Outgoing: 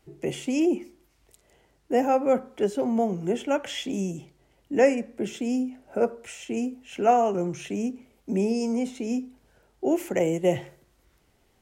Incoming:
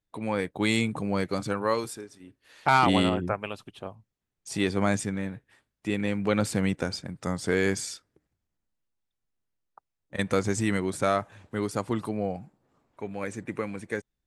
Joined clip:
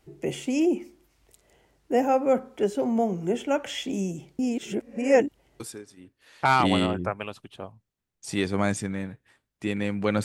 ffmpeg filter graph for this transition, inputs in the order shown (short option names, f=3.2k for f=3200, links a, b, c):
-filter_complex "[0:a]apad=whole_dur=10.24,atrim=end=10.24,asplit=2[a][b];[a]atrim=end=4.392[c];[b]atrim=start=4.388:end=5.602,asetpts=PTS-STARTPTS,areverse[d];[1:a]atrim=start=1.828:end=6.47[e];[c][d]acrossfade=d=0.004:c1=hsin:c2=hsin[f];[f][e]acrossfade=d=0.004:c1=hsin:c2=hsin"